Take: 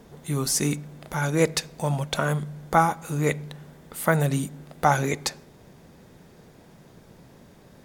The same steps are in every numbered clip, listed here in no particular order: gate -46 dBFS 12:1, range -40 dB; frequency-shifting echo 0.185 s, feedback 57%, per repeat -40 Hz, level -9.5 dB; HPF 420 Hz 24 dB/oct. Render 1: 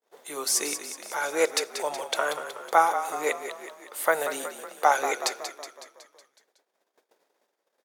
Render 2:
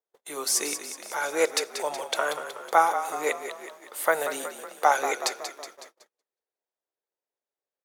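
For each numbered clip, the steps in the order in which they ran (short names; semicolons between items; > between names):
gate > frequency-shifting echo > HPF; frequency-shifting echo > HPF > gate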